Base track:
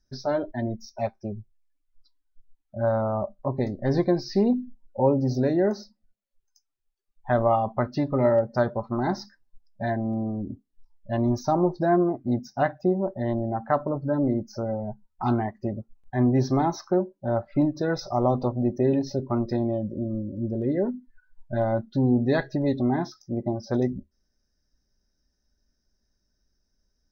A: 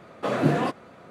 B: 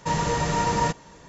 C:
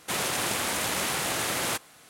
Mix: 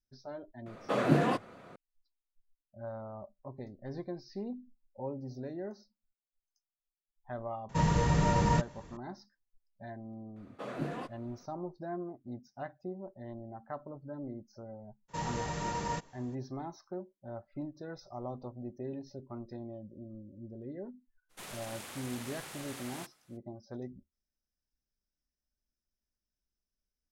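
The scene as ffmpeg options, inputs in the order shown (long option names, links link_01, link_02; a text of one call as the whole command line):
ffmpeg -i bed.wav -i cue0.wav -i cue1.wav -i cue2.wav -filter_complex "[1:a]asplit=2[link_01][link_02];[2:a]asplit=2[link_03][link_04];[0:a]volume=-18dB[link_05];[link_03]bass=frequency=250:gain=9,treble=frequency=4000:gain=-3[link_06];[link_01]atrim=end=1.1,asetpts=PTS-STARTPTS,volume=-4dB,afade=type=in:duration=0.004:curve=hsin,afade=type=out:start_time=1.096:duration=0.004:curve=hsin,adelay=660[link_07];[link_06]atrim=end=1.28,asetpts=PTS-STARTPTS,volume=-7dB,afade=type=in:duration=0.004:curve=hsin,afade=type=out:start_time=1.276:duration=0.004:curve=hsin,adelay=7690[link_08];[link_02]atrim=end=1.1,asetpts=PTS-STARTPTS,volume=-15dB,afade=type=in:duration=0.004:curve=hsin,afade=type=out:start_time=1.096:duration=0.004:curve=hsin,adelay=10360[link_09];[link_04]atrim=end=1.28,asetpts=PTS-STARTPTS,volume=-12dB,afade=type=in:duration=0.02,afade=type=out:start_time=1.26:duration=0.02,adelay=665028S[link_10];[3:a]atrim=end=2.09,asetpts=PTS-STARTPTS,volume=-17.5dB,afade=type=in:duration=0.02,afade=type=out:start_time=2.07:duration=0.02,adelay=21290[link_11];[link_05][link_07][link_08][link_09][link_10][link_11]amix=inputs=6:normalize=0" out.wav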